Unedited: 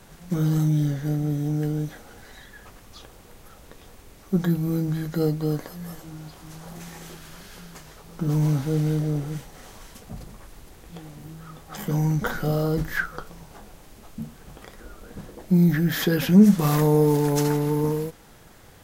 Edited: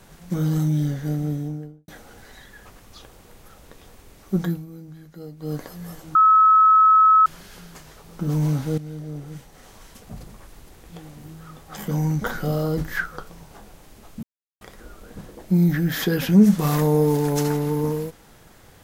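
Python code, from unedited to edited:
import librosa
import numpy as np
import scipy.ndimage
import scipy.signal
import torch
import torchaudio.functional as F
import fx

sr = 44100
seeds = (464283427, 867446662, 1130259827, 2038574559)

y = fx.studio_fade_out(x, sr, start_s=1.22, length_s=0.66)
y = fx.edit(y, sr, fx.fade_down_up(start_s=4.43, length_s=1.17, db=-15.5, fade_s=0.23),
    fx.bleep(start_s=6.15, length_s=1.11, hz=1290.0, db=-10.5),
    fx.fade_in_from(start_s=8.78, length_s=1.38, floor_db=-14.0),
    fx.silence(start_s=14.23, length_s=0.38), tone=tone)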